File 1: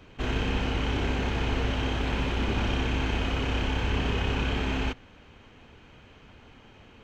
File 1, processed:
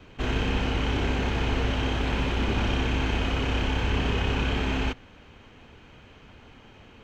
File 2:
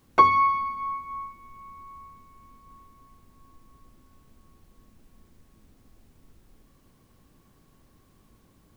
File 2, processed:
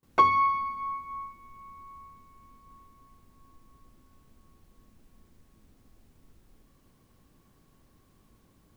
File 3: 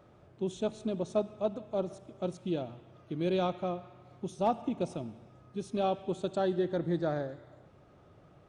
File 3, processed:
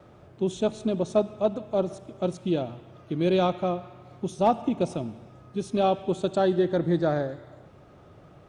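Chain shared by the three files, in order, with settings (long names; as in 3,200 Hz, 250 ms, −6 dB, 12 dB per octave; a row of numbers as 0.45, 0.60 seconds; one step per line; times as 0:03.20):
noise gate with hold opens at −54 dBFS
in parallel at −4 dB: soft clipping −12.5 dBFS
on the sum: loudness normalisation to −27 LKFS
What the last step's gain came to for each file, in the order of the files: −2.5, −7.0, +3.0 decibels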